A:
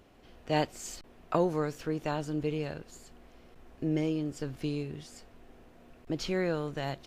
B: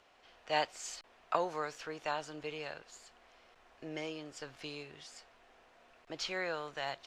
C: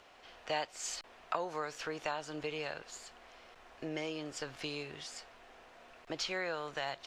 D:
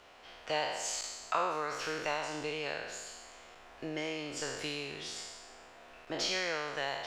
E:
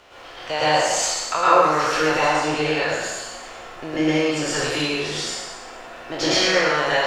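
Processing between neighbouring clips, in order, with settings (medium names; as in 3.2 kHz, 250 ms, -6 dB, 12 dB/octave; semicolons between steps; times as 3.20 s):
three-band isolator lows -20 dB, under 600 Hz, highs -17 dB, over 8 kHz; trim +1 dB
compression 2.5:1, threshold -42 dBFS, peak gain reduction 11 dB; trim +6 dB
spectral sustain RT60 1.25 s
reverberation RT60 0.70 s, pre-delay 102 ms, DRR -8.5 dB; trim +7 dB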